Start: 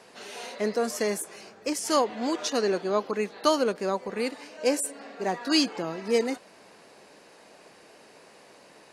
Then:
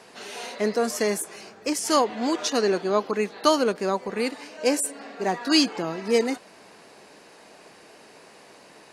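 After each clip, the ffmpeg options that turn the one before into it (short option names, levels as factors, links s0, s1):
-af "equalizer=f=540:w=6.3:g=-3.5,volume=1.5"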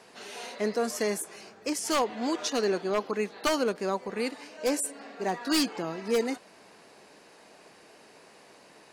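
-af "aeval=exprs='0.211*(abs(mod(val(0)/0.211+3,4)-2)-1)':c=same,volume=0.596"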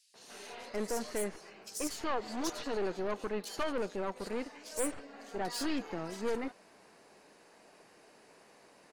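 -filter_complex "[0:a]aeval=exprs='(tanh(25.1*val(0)+0.7)-tanh(0.7))/25.1':c=same,acrossover=split=3500[s0][s1];[s0]adelay=140[s2];[s2][s1]amix=inputs=2:normalize=0,volume=0.841"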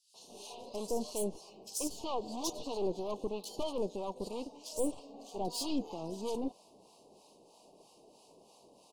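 -filter_complex "[0:a]acrossover=split=710[s0][s1];[s0]aeval=exprs='val(0)*(1-0.7/2+0.7/2*cos(2*PI*3.1*n/s))':c=same[s2];[s1]aeval=exprs='val(0)*(1-0.7/2-0.7/2*cos(2*PI*3.1*n/s))':c=same[s3];[s2][s3]amix=inputs=2:normalize=0,asuperstop=centerf=1700:order=8:qfactor=0.93,volume=1.5"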